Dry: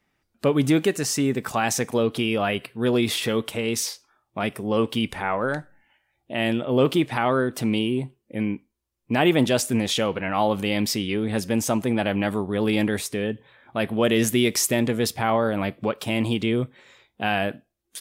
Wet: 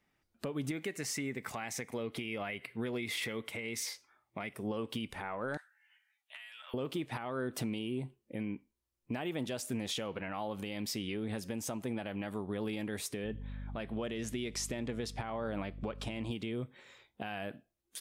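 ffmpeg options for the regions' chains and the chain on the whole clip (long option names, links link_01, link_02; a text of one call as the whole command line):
ffmpeg -i in.wav -filter_complex "[0:a]asettb=1/sr,asplit=3[link_01][link_02][link_03];[link_01]atrim=end=0.714[link_04];[link_02]atrim=start=0.71:end=4.54,asetpts=PTS-STARTPTS,afade=type=in:duration=0.004:curve=qsin,afade=type=out:start_time=3.826:duration=0.004:curve=qsin,highpass=49,equalizer=frequency=2100:width=5.4:gain=14.5[link_05];[link_03]atrim=start=4.536[link_06];[link_04][link_05]acrossfade=duration=0.004:curve1=hsin:curve2=qsin[link_07];[link_07][link_06]acrossfade=duration=0.004:curve1=qsin:curve2=hsin,asettb=1/sr,asplit=3[link_08][link_09][link_10];[link_08]atrim=end=5.574[link_11];[link_09]atrim=start=5.57:end=6.74,asetpts=PTS-STARTPTS,afade=type=in:duration=0.004:curve=qsin,afade=type=out:start_time=1.166:duration=0.004:curve=qsin,highpass=frequency=1300:width=0.5412,highpass=frequency=1300:width=1.3066,acompressor=threshold=-40dB:ratio=20:attack=3.2:release=140:knee=1:detection=peak,asplit=2[link_12][link_13];[link_13]adelay=13,volume=-3dB[link_14];[link_12][link_14]amix=inputs=2:normalize=0,atrim=end_sample=51597[link_15];[link_10]atrim=start=6.736[link_16];[link_11][link_15]acrossfade=duration=0.004:curve1=hsin:curve2=qsin[link_17];[link_17][link_16]acrossfade=duration=0.004:curve1=qsin:curve2=hsin,asettb=1/sr,asplit=3[link_18][link_19][link_20];[link_18]atrim=end=13.244[link_21];[link_19]atrim=start=13.24:end=16.31,asetpts=PTS-STARTPTS,afade=type=in:duration=0.004:curve=qsin,afade=type=out:start_time=3.066:duration=0.004:curve=qsin,aeval=exprs='val(0)+0.0178*(sin(2*PI*50*n/s)+sin(2*PI*2*50*n/s)/2+sin(2*PI*3*50*n/s)/3+sin(2*PI*4*50*n/s)/4+sin(2*PI*5*50*n/s)/5)':channel_layout=same,lowpass=7500[link_22];[link_20]atrim=start=16.306[link_23];[link_21][link_22]acrossfade=duration=0.004:curve1=hsin:curve2=qsin[link_24];[link_24][link_23]acrossfade=duration=0.004:curve1=qsin:curve2=hsin,acompressor=threshold=-25dB:ratio=6,alimiter=limit=-21dB:level=0:latency=1:release=291,volume=-5.5dB" out.wav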